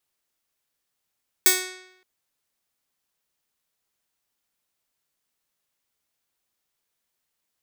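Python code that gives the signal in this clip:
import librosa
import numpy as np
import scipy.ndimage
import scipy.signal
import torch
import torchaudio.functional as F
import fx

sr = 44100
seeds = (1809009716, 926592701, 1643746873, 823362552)

y = fx.pluck(sr, length_s=0.57, note=66, decay_s=0.83, pick=0.37, brightness='bright')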